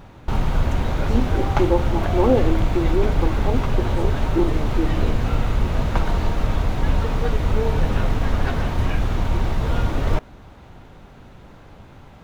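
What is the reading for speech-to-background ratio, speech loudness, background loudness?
-1.5 dB, -25.0 LUFS, -23.5 LUFS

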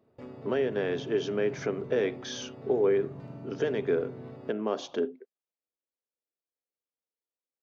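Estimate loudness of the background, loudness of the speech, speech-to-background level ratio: -44.0 LUFS, -30.5 LUFS, 13.5 dB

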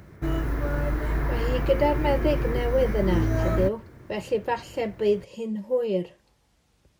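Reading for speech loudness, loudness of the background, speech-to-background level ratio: -27.0 LUFS, -28.0 LUFS, 1.0 dB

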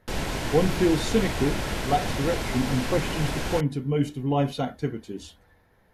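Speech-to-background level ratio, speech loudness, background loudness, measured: 3.0 dB, -27.0 LUFS, -30.0 LUFS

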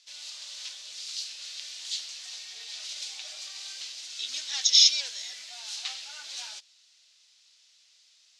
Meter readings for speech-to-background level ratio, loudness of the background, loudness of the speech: 17.0 dB, -37.0 LUFS, -20.0 LUFS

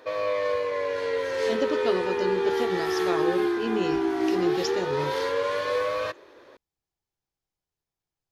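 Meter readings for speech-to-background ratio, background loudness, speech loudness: -5.0 dB, -26.5 LUFS, -31.5 LUFS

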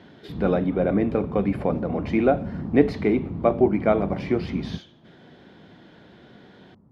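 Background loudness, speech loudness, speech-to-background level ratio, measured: -33.0 LUFS, -23.5 LUFS, 9.5 dB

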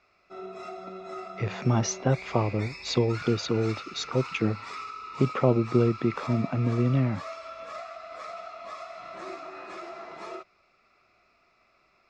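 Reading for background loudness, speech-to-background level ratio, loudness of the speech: -40.0 LUFS, 13.0 dB, -27.0 LUFS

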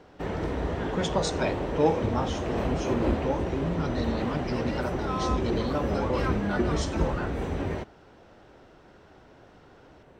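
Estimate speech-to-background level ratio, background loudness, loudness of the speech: -2.0 dB, -30.0 LUFS, -32.0 LUFS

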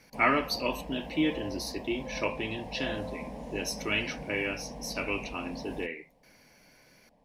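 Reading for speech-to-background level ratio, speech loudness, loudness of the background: 9.5 dB, -32.5 LUFS, -42.0 LUFS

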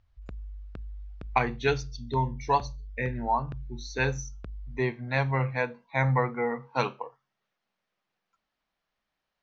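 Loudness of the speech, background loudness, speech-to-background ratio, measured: -29.5 LUFS, -44.0 LUFS, 14.5 dB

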